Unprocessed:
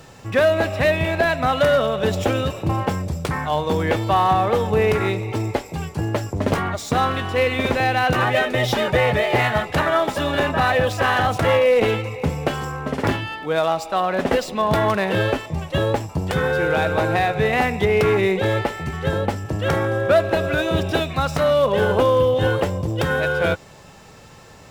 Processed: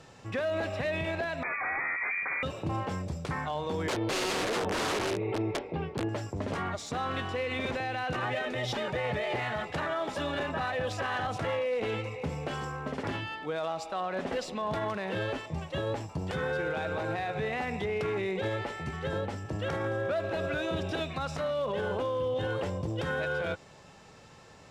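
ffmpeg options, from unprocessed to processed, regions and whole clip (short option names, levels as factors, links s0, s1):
-filter_complex "[0:a]asettb=1/sr,asplit=3[s0][s1][s2];[s0]atrim=end=1.434[s3];[s1]atrim=start=1.43:end=2.43,asetpts=PTS-STARTPTS,afade=t=in:d=0.004:c=qsin,afade=t=out:st=0.996:d=0.004:c=qsin,aeval=exprs='0.126*(abs(mod(val(0)/0.126+3,4)-2)-1)':c=same,lowpass=f=2100:t=q:w=0.5098,lowpass=f=2100:t=q:w=0.6013,lowpass=f=2100:t=q:w=0.9,lowpass=f=2100:t=q:w=2.563,afreqshift=-2500[s4];[s2]atrim=start=2.426[s5];[s3][s4]acrossfade=d=0.004:c1=hsin:c2=qsin[s6];[s6][s5]acrossfade=d=0.004:c1=qsin:c2=hsin,asettb=1/sr,asplit=3[s7][s8][s9];[s7]atrim=end=3.874[s10];[s8]atrim=start=3.87:end=6.09,asetpts=PTS-STARTPTS,afade=t=in:d=0.004:c=qsin,afade=t=out:st=2.216:d=0.004:c=qsin,lowpass=f=3400:w=0.5412,lowpass=f=3400:w=1.3066,aeval=exprs='(mod(6.31*val(0)+1,2)-1)/6.31':c=same,equalizer=f=410:t=o:w=1.5:g=9[s11];[s9]atrim=start=6.086[s12];[s10][s11]acrossfade=d=0.004:c1=hsin:c2=qsin[s13];[s13][s12]acrossfade=d=0.004:c1=qsin:c2=hsin,lowpass=7900,lowshelf=f=79:g=-6,alimiter=limit=0.168:level=0:latency=1:release=51,volume=0.398"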